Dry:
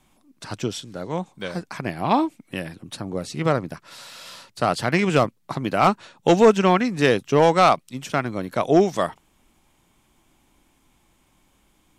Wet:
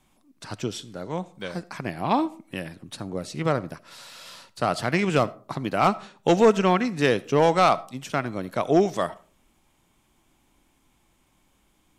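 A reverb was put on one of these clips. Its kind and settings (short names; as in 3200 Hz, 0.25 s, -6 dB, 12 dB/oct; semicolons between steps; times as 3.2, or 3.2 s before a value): digital reverb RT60 0.42 s, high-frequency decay 0.45×, pre-delay 30 ms, DRR 19.5 dB; gain -3 dB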